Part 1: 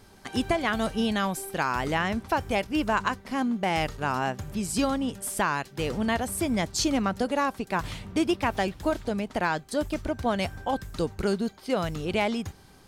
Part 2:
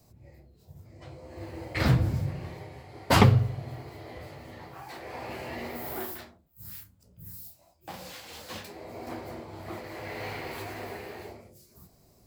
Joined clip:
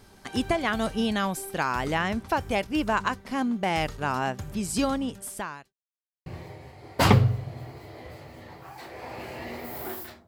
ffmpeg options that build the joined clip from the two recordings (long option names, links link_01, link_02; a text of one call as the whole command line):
ffmpeg -i cue0.wav -i cue1.wav -filter_complex "[0:a]apad=whole_dur=10.27,atrim=end=10.27,asplit=2[link_01][link_02];[link_01]atrim=end=5.73,asetpts=PTS-STARTPTS,afade=type=out:start_time=4.94:duration=0.79[link_03];[link_02]atrim=start=5.73:end=6.26,asetpts=PTS-STARTPTS,volume=0[link_04];[1:a]atrim=start=2.37:end=6.38,asetpts=PTS-STARTPTS,afade=type=in:duration=0.004:curve=hsin[link_05];[link_03][link_04][link_05]concat=n=3:v=0:a=1" out.wav